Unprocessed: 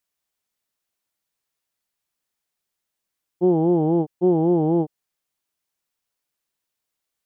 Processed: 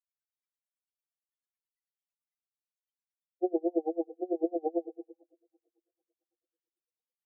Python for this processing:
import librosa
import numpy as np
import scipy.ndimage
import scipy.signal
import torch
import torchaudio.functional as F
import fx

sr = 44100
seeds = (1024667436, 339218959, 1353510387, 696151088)

y = scipy.signal.sosfilt(scipy.signal.butter(4, 390.0, 'highpass', fs=sr, output='sos'), x)
y = fx.notch(y, sr, hz=840.0, q=12.0)
y = fx.rev_double_slope(y, sr, seeds[0], early_s=0.96, late_s=3.1, knee_db=-28, drr_db=8.0)
y = fx.spec_topn(y, sr, count=8)
y = y * 10.0 ** (-33 * (0.5 - 0.5 * np.cos(2.0 * np.pi * 9.0 * np.arange(len(y)) / sr)) / 20.0)